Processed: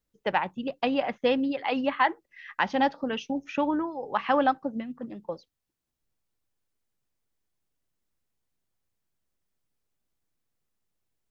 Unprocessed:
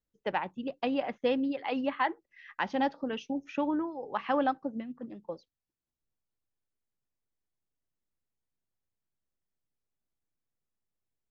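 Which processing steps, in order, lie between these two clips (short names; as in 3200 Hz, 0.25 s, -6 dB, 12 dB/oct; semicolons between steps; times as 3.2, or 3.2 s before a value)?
dynamic EQ 340 Hz, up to -4 dB, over -44 dBFS, Q 0.95; gain +6.5 dB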